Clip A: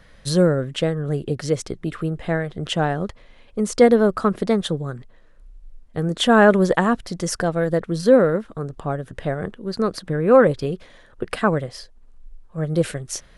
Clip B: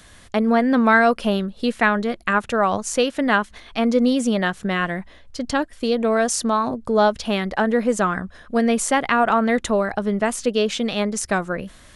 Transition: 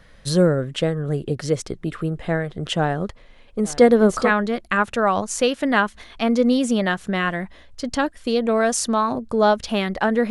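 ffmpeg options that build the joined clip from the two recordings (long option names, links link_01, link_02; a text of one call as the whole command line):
ffmpeg -i cue0.wav -i cue1.wav -filter_complex "[0:a]asplit=3[link_01][link_02][link_03];[link_01]afade=type=out:start_time=3.62:duration=0.02[link_04];[link_02]aecho=1:1:437|874|1311:0.631|0.114|0.0204,afade=type=in:start_time=3.62:duration=0.02,afade=type=out:start_time=4.32:duration=0.02[link_05];[link_03]afade=type=in:start_time=4.32:duration=0.02[link_06];[link_04][link_05][link_06]amix=inputs=3:normalize=0,apad=whole_dur=10.3,atrim=end=10.3,atrim=end=4.32,asetpts=PTS-STARTPTS[link_07];[1:a]atrim=start=1.78:end=7.86,asetpts=PTS-STARTPTS[link_08];[link_07][link_08]acrossfade=duration=0.1:curve1=tri:curve2=tri" out.wav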